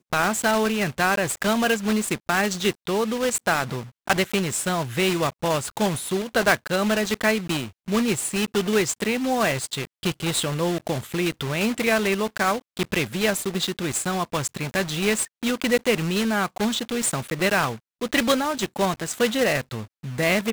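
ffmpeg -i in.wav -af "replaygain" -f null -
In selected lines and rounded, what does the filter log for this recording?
track_gain = +3.8 dB
track_peak = 0.464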